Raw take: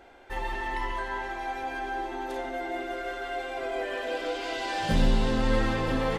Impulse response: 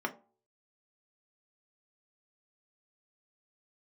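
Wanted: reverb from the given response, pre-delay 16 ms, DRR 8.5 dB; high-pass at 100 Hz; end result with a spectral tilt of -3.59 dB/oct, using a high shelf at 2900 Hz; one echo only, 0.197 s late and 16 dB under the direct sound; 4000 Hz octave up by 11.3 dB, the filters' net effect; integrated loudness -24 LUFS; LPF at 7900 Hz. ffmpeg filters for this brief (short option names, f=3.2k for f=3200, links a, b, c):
-filter_complex "[0:a]highpass=100,lowpass=7.9k,highshelf=f=2.9k:g=8.5,equalizer=f=4k:t=o:g=8,aecho=1:1:197:0.158,asplit=2[a][b];[1:a]atrim=start_sample=2205,adelay=16[c];[b][c]afir=irnorm=-1:irlink=0,volume=-14dB[d];[a][d]amix=inputs=2:normalize=0,volume=3.5dB"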